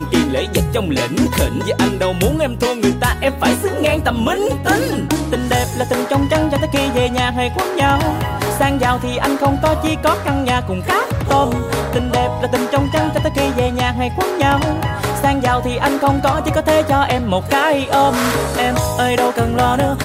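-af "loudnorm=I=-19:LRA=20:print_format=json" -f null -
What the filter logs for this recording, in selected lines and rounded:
"input_i" : "-16.4",
"input_tp" : "-3.2",
"input_lra" : "1.4",
"input_thresh" : "-26.4",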